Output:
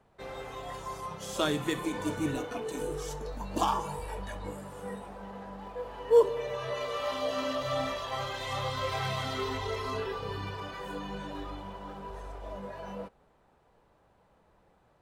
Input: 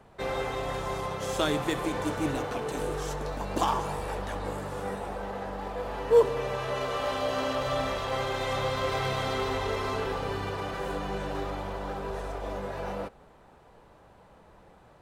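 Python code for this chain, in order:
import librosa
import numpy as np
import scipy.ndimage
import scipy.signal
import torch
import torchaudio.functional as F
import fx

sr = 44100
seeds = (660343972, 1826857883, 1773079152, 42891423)

y = fx.noise_reduce_blind(x, sr, reduce_db=9)
y = F.gain(torch.from_numpy(y), -1.0).numpy()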